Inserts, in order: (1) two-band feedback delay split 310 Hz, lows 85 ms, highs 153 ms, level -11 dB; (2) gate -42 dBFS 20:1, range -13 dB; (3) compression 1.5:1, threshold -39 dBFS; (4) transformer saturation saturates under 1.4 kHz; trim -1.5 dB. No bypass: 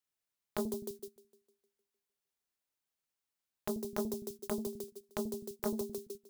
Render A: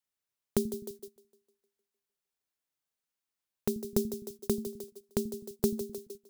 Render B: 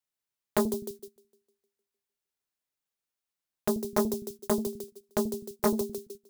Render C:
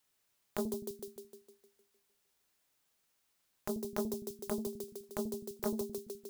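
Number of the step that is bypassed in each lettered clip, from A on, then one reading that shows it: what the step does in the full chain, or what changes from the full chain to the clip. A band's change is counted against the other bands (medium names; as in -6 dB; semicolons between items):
4, crest factor change -2.5 dB; 3, mean gain reduction 5.5 dB; 2, momentary loudness spread change +3 LU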